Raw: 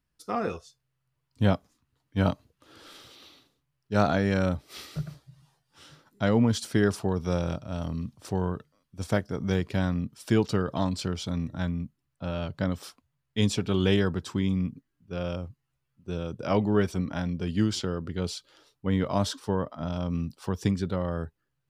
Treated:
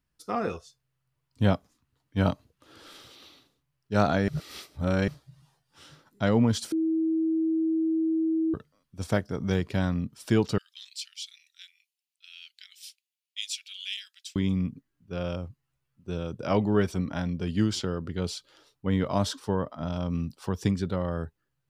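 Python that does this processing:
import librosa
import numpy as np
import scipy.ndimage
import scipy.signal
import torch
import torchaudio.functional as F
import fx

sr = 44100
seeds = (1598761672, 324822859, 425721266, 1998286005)

y = fx.steep_highpass(x, sr, hz=2400.0, slope=36, at=(10.58, 14.36))
y = fx.edit(y, sr, fx.reverse_span(start_s=4.28, length_s=0.8),
    fx.bleep(start_s=6.72, length_s=1.82, hz=322.0, db=-22.5), tone=tone)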